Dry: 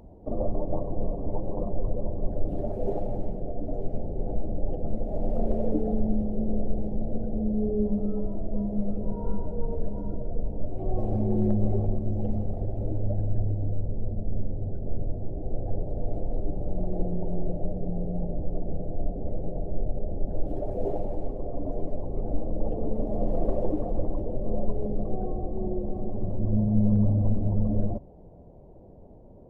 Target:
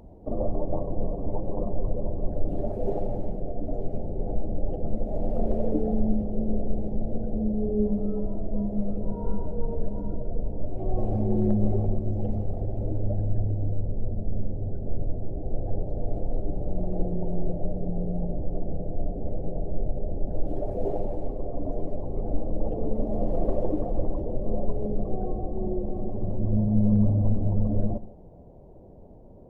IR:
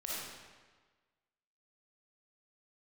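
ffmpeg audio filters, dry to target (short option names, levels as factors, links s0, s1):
-filter_complex "[0:a]asplit=2[s0][s1];[1:a]atrim=start_sample=2205,afade=t=out:st=0.16:d=0.01,atrim=end_sample=7497,asetrate=26460,aresample=44100[s2];[s1][s2]afir=irnorm=-1:irlink=0,volume=0.119[s3];[s0][s3]amix=inputs=2:normalize=0"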